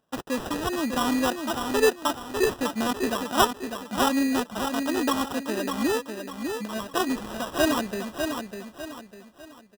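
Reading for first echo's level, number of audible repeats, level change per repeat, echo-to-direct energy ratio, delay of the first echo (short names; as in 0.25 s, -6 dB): -6.0 dB, 4, -9.0 dB, -5.5 dB, 0.6 s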